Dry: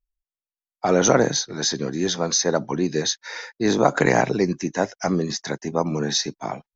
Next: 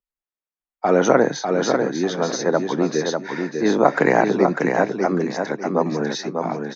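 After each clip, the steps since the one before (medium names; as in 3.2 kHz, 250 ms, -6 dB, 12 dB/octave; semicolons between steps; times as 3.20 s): three-band isolator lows -20 dB, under 160 Hz, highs -13 dB, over 2.5 kHz; feedback delay 597 ms, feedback 27%, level -5 dB; trim +2.5 dB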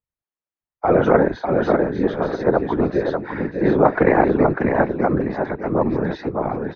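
whisper effect; distance through air 480 m; trim +2.5 dB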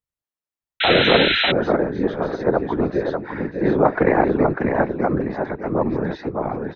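painted sound noise, 0.80–1.52 s, 1.3–4.1 kHz -18 dBFS; trim -1.5 dB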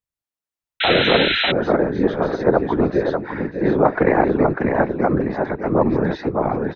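level rider gain up to 7.5 dB; trim -1 dB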